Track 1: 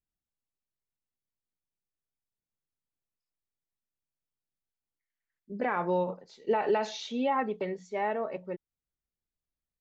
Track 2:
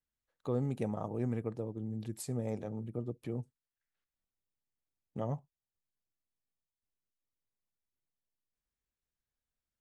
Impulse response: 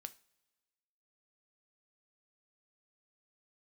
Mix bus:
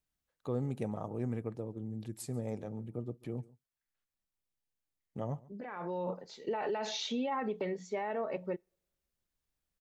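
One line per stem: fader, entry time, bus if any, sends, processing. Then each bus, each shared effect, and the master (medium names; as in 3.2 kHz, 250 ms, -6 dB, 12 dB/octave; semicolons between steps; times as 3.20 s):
+2.5 dB, 0.00 s, send -11 dB, no echo send, peak limiter -27 dBFS, peak gain reduction 9.5 dB; compression 2:1, threshold -38 dBFS, peak gain reduction 4.5 dB; auto duck -16 dB, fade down 1.75 s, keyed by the second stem
-1.5 dB, 0.00 s, no send, echo send -22.5 dB, none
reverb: on, pre-delay 3 ms
echo: delay 140 ms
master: none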